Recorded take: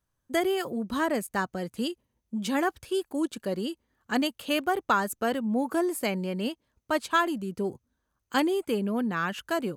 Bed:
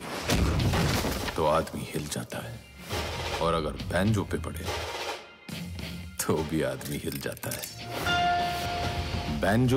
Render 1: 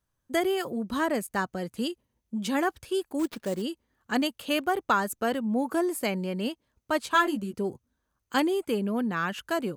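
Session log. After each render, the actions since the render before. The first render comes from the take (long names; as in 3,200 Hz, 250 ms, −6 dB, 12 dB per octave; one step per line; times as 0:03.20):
0:03.19–0:03.62: sample-rate reduction 8,000 Hz, jitter 20%
0:07.05–0:07.54: double-tracking delay 14 ms −4 dB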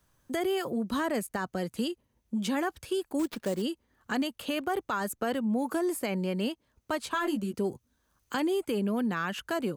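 brickwall limiter −22 dBFS, peak gain reduction 11 dB
multiband upward and downward compressor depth 40%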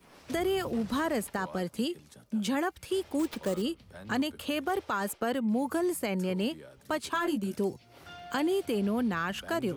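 mix in bed −21 dB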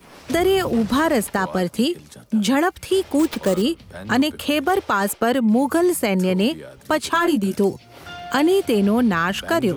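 level +11.5 dB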